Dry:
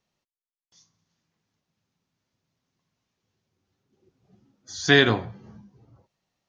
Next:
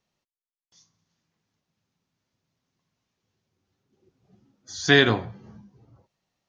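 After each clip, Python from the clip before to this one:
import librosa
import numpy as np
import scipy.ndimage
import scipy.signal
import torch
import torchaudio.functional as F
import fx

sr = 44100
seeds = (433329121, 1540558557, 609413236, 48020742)

y = x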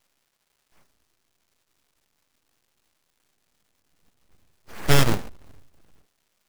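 y = fx.halfwave_hold(x, sr)
y = fx.dmg_crackle(y, sr, seeds[0], per_s=540.0, level_db=-55.0)
y = np.abs(y)
y = y * librosa.db_to_amplitude(-1.5)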